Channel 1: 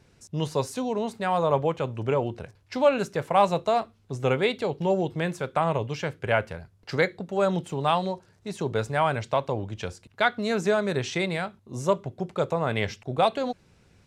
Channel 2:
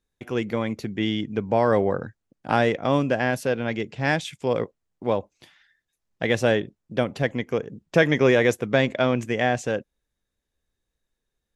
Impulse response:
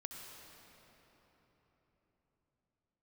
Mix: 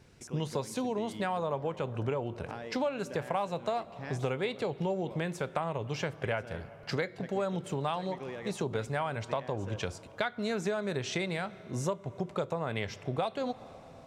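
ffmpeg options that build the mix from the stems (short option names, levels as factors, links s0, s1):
-filter_complex "[0:a]volume=0.944,asplit=2[s0][s1];[s1]volume=0.158[s2];[1:a]acompressor=threshold=0.0631:ratio=6,volume=0.2[s3];[2:a]atrim=start_sample=2205[s4];[s2][s4]afir=irnorm=-1:irlink=0[s5];[s0][s3][s5]amix=inputs=3:normalize=0,acompressor=threshold=0.0355:ratio=6"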